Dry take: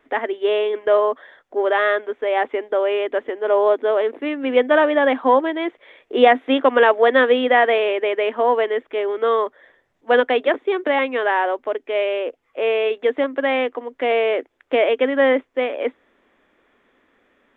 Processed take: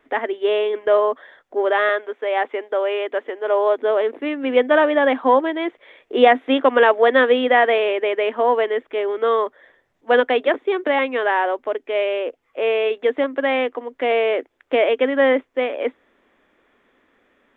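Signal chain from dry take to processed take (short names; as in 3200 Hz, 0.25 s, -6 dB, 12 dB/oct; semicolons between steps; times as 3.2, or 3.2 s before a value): 1.89–3.78 Bessel high-pass 390 Hz, order 2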